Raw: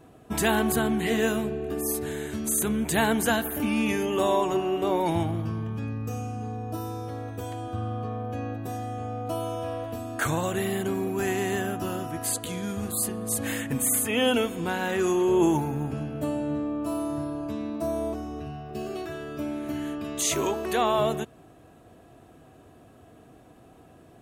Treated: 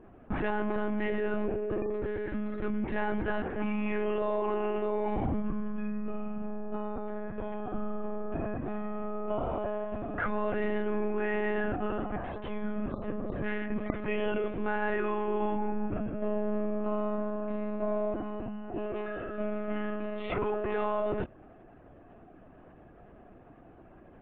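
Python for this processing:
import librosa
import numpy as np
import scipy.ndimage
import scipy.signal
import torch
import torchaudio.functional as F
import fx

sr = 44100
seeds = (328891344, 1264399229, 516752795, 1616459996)

p1 = scipy.signal.sosfilt(scipy.signal.butter(4, 2300.0, 'lowpass', fs=sr, output='sos'), x)
p2 = fx.over_compress(p1, sr, threshold_db=-28.0, ratio=-0.5)
p3 = p1 + F.gain(torch.from_numpy(p2), 1.0).numpy()
p4 = fx.lpc_monotone(p3, sr, seeds[0], pitch_hz=210.0, order=16)
y = F.gain(torch.from_numpy(p4), -8.5).numpy()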